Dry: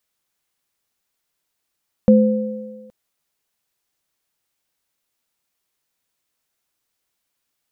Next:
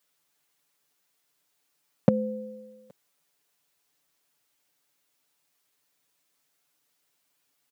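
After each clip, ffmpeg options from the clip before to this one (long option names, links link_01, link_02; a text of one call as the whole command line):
ffmpeg -i in.wav -af "highpass=130,aecho=1:1:6.9:0.88" out.wav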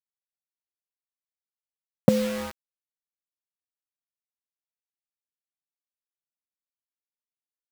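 ffmpeg -i in.wav -af "acrusher=bits=5:mix=0:aa=0.000001,volume=3.5dB" out.wav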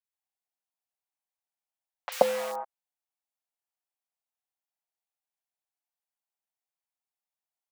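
ffmpeg -i in.wav -filter_complex "[0:a]highpass=frequency=760:width_type=q:width=3.4,acrossover=split=1200|4400[link_01][link_02][link_03];[link_03]adelay=40[link_04];[link_01]adelay=130[link_05];[link_05][link_02][link_04]amix=inputs=3:normalize=0" out.wav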